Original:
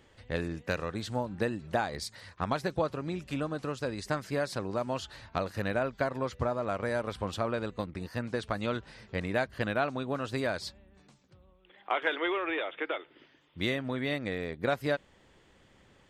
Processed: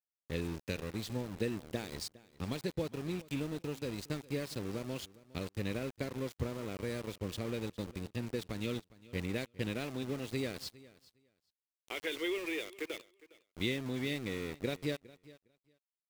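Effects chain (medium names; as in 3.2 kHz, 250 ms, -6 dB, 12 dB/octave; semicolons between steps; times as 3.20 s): high-order bell 1 kHz -15 dB; small samples zeroed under -40 dBFS; feedback delay 409 ms, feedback 15%, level -20.5 dB; trim -2.5 dB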